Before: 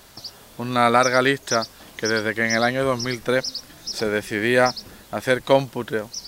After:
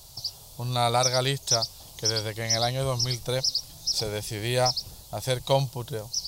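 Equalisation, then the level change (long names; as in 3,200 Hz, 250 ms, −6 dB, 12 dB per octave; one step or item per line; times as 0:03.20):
drawn EQ curve 150 Hz 0 dB, 220 Hz −17 dB, 840 Hz −3 dB, 1,700 Hz −19 dB, 4,400 Hz +4 dB
dynamic equaliser 2,500 Hz, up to +4 dB, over −40 dBFS, Q 1.1
low-shelf EQ 360 Hz +5 dB
−1.5 dB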